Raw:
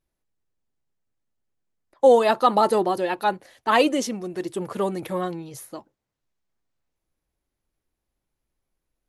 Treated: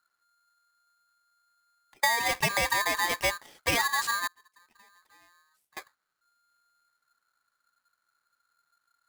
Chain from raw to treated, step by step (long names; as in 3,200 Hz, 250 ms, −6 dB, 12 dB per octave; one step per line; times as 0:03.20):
low-shelf EQ 380 Hz +6 dB
downward compressor 10 to 1, threshold −21 dBFS, peak gain reduction 13 dB
0:04.27–0:05.77: gate with flip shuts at −32 dBFS, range −32 dB
ring modulator with a square carrier 1,400 Hz
level −2 dB